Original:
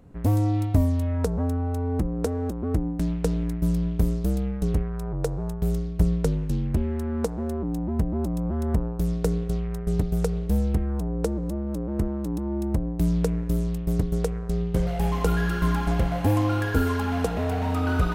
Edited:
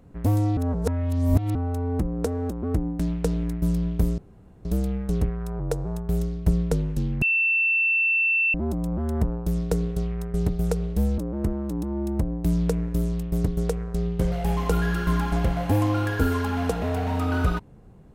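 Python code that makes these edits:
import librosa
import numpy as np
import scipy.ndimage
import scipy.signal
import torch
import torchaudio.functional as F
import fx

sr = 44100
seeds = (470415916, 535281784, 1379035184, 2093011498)

y = fx.edit(x, sr, fx.reverse_span(start_s=0.57, length_s=0.98),
    fx.insert_room_tone(at_s=4.18, length_s=0.47),
    fx.bleep(start_s=6.75, length_s=1.32, hz=2680.0, db=-18.5),
    fx.cut(start_s=10.71, length_s=1.02), tone=tone)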